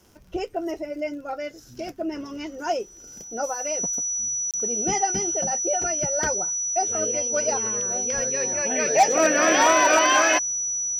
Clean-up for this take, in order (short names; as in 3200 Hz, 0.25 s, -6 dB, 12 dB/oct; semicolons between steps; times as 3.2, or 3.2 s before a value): clip repair -10.5 dBFS; de-click; notch 5900 Hz, Q 30; interpolate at 4.51, 27 ms